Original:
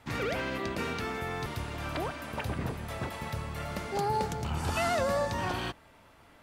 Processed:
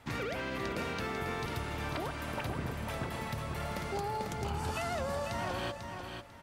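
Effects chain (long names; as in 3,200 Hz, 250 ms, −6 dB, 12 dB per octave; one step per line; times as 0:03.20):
downward compressor, threshold −33 dBFS, peak gain reduction 8 dB
repeating echo 495 ms, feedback 24%, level −6 dB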